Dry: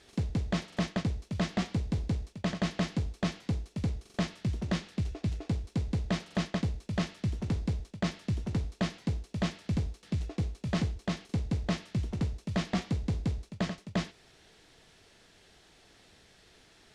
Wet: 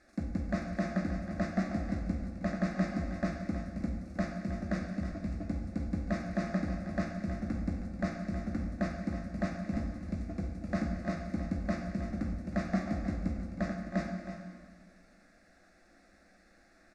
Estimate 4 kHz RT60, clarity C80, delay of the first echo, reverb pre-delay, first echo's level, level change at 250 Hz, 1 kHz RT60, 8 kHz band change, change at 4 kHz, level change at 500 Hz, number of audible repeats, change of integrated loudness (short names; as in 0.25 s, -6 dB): 1.5 s, 4.0 dB, 0.317 s, 5 ms, -11.0 dB, +0.5 dB, 1.8 s, n/a, -13.5 dB, +0.5 dB, 1, -2.0 dB